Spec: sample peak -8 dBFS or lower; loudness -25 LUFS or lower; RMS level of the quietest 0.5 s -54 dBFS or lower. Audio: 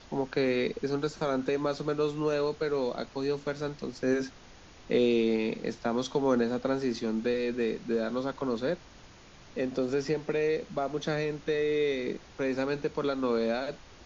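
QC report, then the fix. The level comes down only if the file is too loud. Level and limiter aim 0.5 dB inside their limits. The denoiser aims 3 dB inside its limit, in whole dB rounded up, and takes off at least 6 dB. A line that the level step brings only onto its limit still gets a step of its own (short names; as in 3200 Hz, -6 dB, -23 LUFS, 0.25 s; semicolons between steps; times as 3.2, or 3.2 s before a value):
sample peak -14.5 dBFS: OK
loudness -30.5 LUFS: OK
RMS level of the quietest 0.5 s -52 dBFS: fail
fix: denoiser 6 dB, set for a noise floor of -52 dBFS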